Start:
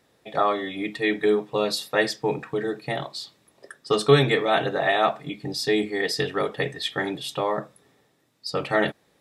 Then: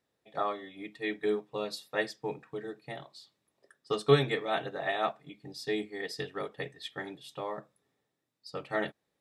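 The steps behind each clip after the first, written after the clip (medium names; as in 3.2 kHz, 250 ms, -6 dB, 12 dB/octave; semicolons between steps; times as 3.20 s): upward expansion 1.5:1, over -35 dBFS; trim -5.5 dB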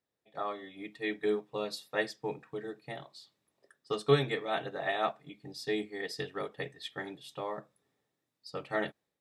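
level rider gain up to 8 dB; trim -8.5 dB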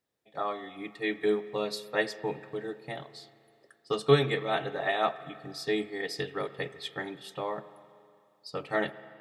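reverberation RT60 2.4 s, pre-delay 79 ms, DRR 15.5 dB; trim +3.5 dB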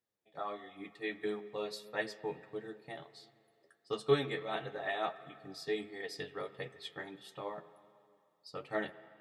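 flange 1.5 Hz, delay 8 ms, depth 4.5 ms, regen +36%; trim -4 dB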